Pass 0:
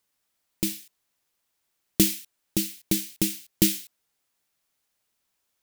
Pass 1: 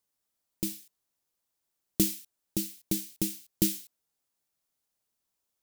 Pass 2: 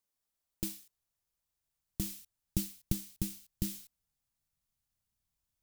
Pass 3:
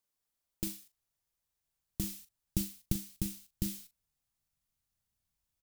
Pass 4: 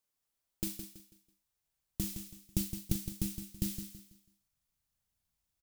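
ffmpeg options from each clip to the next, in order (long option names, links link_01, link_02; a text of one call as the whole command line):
ffmpeg -i in.wav -af "equalizer=frequency=2200:width_type=o:width=1.8:gain=-6,volume=-5dB" out.wav
ffmpeg -i in.wav -af "acrusher=bits=3:mode=log:mix=0:aa=0.000001,alimiter=limit=-16.5dB:level=0:latency=1:release=223,asubboost=boost=11:cutoff=120,volume=-4.5dB" out.wav
ffmpeg -i in.wav -filter_complex "[0:a]asplit=2[link_01][link_02];[link_02]adelay=40,volume=-13dB[link_03];[link_01][link_03]amix=inputs=2:normalize=0" out.wav
ffmpeg -i in.wav -af "aecho=1:1:164|328|492|656:0.355|0.114|0.0363|0.0116" out.wav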